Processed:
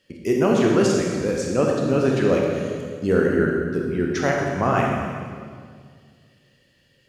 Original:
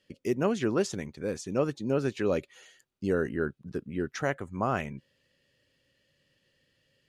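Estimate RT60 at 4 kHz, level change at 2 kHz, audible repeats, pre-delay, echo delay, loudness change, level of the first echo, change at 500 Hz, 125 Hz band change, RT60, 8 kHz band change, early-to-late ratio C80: 1.7 s, +9.5 dB, no echo, 23 ms, no echo, +9.5 dB, no echo, +10.0 dB, +10.5 dB, 2.0 s, +9.5 dB, 2.5 dB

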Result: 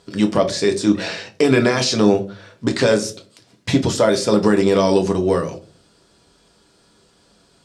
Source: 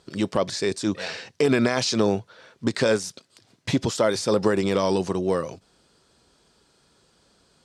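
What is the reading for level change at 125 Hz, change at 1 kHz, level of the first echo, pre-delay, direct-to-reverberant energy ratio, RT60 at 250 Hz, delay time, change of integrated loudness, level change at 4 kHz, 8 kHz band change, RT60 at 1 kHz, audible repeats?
+6.5 dB, +5.5 dB, no echo, 4 ms, 4.0 dB, 0.50 s, no echo, +6.0 dB, +5.5 dB, +5.0 dB, 0.35 s, no echo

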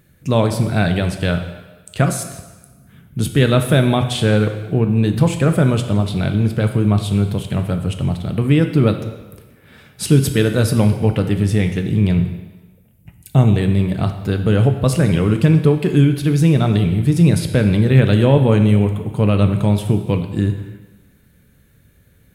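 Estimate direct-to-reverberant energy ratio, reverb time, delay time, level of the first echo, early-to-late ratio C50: 6.0 dB, 1.3 s, no echo, no echo, 8.5 dB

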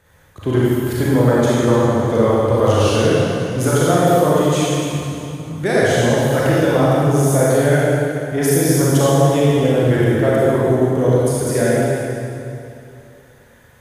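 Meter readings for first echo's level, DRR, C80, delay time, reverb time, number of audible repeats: no echo, -8.0 dB, -3.0 dB, no echo, 2.7 s, no echo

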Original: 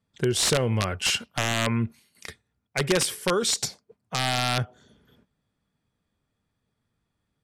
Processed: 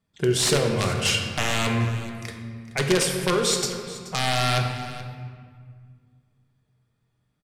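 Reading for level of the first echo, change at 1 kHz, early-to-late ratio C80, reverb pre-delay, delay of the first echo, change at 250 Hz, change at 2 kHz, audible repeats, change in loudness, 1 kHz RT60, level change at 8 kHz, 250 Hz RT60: -16.5 dB, +2.5 dB, 5.5 dB, 3 ms, 428 ms, +2.5 dB, +2.0 dB, 1, +1.5 dB, 1.9 s, +1.0 dB, 2.6 s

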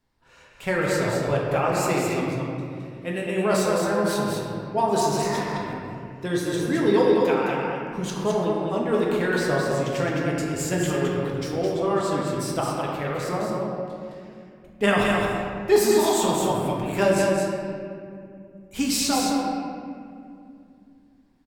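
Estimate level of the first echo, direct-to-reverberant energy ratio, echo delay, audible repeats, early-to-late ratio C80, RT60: -4.0 dB, -5.0 dB, 213 ms, 1, -1.0 dB, 2.4 s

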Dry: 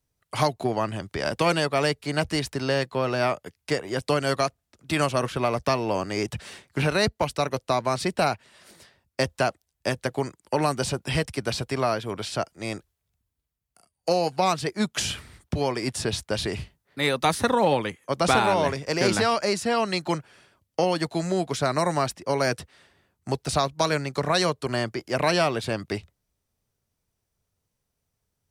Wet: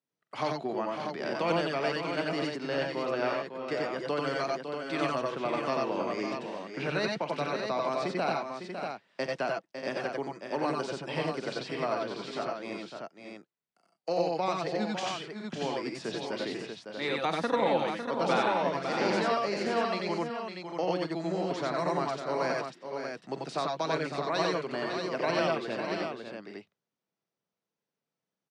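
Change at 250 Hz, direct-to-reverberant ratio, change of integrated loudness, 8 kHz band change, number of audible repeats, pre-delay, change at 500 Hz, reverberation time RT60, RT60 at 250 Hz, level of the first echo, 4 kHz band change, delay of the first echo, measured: -5.5 dB, no reverb, -6.0 dB, -14.5 dB, 5, no reverb, -5.0 dB, no reverb, no reverb, -13.5 dB, -8.0 dB, 43 ms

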